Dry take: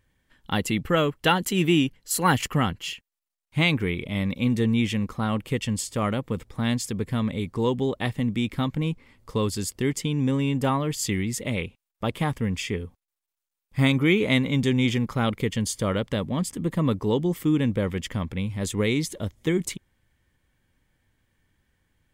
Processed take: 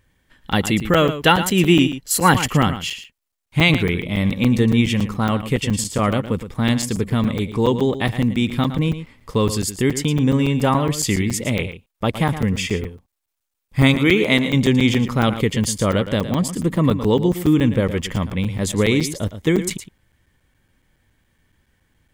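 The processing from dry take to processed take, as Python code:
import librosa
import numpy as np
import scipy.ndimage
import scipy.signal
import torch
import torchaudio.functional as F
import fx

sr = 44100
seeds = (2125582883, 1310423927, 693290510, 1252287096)

y = fx.highpass(x, sr, hz=220.0, slope=6, at=(13.94, 14.54))
y = y + 10.0 ** (-11.5 / 20.0) * np.pad(y, (int(113 * sr / 1000.0), 0))[:len(y)]
y = fx.buffer_crackle(y, sr, first_s=0.52, period_s=0.14, block=256, kind='zero')
y = F.gain(torch.from_numpy(y), 6.5).numpy()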